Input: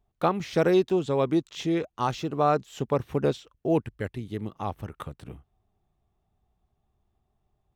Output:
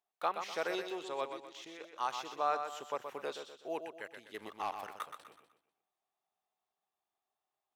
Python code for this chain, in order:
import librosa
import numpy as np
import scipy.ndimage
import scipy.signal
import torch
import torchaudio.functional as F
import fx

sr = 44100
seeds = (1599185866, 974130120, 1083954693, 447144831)

p1 = scipy.signal.sosfilt(scipy.signal.butter(2, 790.0, 'highpass', fs=sr, output='sos'), x)
p2 = fx.level_steps(p1, sr, step_db=11, at=(1.3, 1.81))
p3 = fx.leveller(p2, sr, passes=2, at=(4.34, 5.06))
p4 = p3 + fx.echo_feedback(p3, sr, ms=124, feedback_pct=39, wet_db=-7.5, dry=0)
y = p4 * librosa.db_to_amplitude(-6.0)